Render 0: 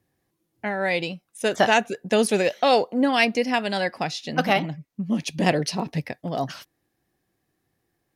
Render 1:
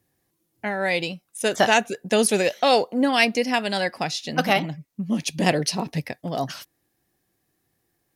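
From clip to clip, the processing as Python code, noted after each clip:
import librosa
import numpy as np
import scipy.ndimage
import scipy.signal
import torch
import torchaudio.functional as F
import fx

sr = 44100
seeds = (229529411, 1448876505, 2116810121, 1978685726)

y = fx.high_shelf(x, sr, hz=5300.0, db=8.0)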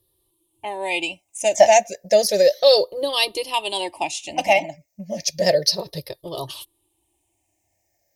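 y = fx.spec_ripple(x, sr, per_octave=0.62, drift_hz=-0.32, depth_db=16)
y = fx.fixed_phaser(y, sr, hz=590.0, stages=4)
y = y + 0.54 * np.pad(y, (int(3.3 * sr / 1000.0), 0))[:len(y)]
y = y * librosa.db_to_amplitude(1.0)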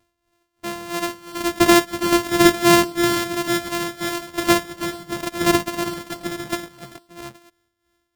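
y = np.r_[np.sort(x[:len(x) // 128 * 128].reshape(-1, 128), axis=1).ravel(), x[len(x) // 128 * 128:]]
y = fx.echo_multitap(y, sr, ms=(57, 328, 426, 449, 851), db=(-15.0, -11.5, -17.0, -17.5, -6.5))
y = y * (1.0 - 0.69 / 2.0 + 0.69 / 2.0 * np.cos(2.0 * np.pi * 2.9 * (np.arange(len(y)) / sr)))
y = y * librosa.db_to_amplitude(1.0)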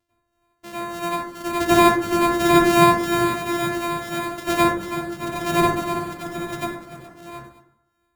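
y = fx.rev_plate(x, sr, seeds[0], rt60_s=0.77, hf_ratio=0.25, predelay_ms=80, drr_db=-10.0)
y = y * librosa.db_to_amplitude(-10.5)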